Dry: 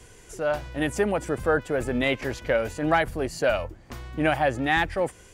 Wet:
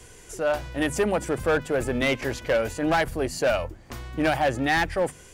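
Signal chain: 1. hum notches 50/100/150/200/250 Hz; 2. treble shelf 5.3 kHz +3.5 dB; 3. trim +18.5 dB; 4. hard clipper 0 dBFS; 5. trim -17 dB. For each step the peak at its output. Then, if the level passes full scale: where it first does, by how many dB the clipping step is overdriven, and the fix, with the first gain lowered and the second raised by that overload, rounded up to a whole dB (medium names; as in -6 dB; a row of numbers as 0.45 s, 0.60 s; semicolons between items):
-9.0 dBFS, -9.0 dBFS, +9.5 dBFS, 0.0 dBFS, -17.0 dBFS; step 3, 9.5 dB; step 3 +8.5 dB, step 5 -7 dB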